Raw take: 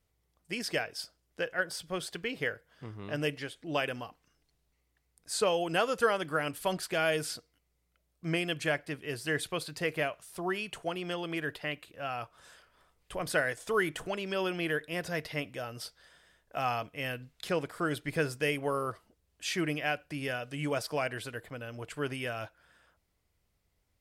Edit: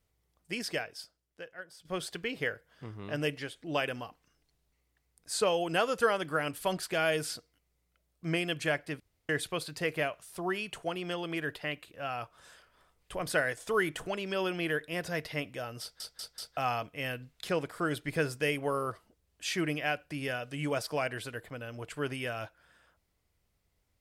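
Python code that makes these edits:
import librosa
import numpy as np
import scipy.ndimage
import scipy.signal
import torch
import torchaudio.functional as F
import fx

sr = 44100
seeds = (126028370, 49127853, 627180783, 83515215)

y = fx.edit(x, sr, fx.fade_out_to(start_s=0.57, length_s=1.28, curve='qua', floor_db=-15.0),
    fx.room_tone_fill(start_s=9.0, length_s=0.29),
    fx.stutter_over(start_s=15.81, slice_s=0.19, count=4), tone=tone)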